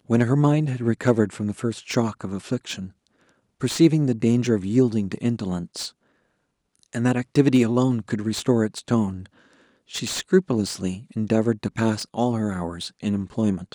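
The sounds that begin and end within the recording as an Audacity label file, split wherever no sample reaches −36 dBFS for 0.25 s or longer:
3.610000	5.890000	sound
6.830000	9.260000	sound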